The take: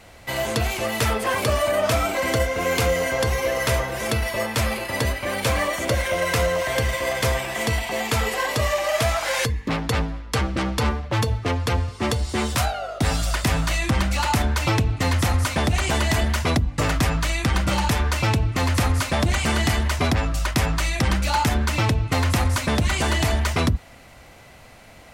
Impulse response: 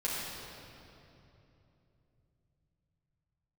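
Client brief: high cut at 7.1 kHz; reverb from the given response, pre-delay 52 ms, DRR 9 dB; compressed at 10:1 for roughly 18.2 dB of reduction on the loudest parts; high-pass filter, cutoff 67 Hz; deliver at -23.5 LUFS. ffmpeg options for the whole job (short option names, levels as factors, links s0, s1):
-filter_complex "[0:a]highpass=67,lowpass=7100,acompressor=threshold=0.0158:ratio=10,asplit=2[s0][s1];[1:a]atrim=start_sample=2205,adelay=52[s2];[s1][s2]afir=irnorm=-1:irlink=0,volume=0.168[s3];[s0][s3]amix=inputs=2:normalize=0,volume=5.62"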